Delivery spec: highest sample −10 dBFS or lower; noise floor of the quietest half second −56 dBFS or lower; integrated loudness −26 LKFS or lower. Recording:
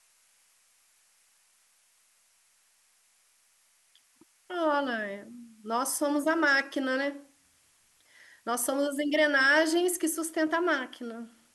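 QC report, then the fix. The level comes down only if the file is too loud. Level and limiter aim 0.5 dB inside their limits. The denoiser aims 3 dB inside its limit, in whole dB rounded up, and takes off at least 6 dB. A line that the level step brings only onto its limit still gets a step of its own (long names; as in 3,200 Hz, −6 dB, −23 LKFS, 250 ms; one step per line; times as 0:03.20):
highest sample −12.5 dBFS: in spec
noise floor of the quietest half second −67 dBFS: in spec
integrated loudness −27.5 LKFS: in spec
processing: no processing needed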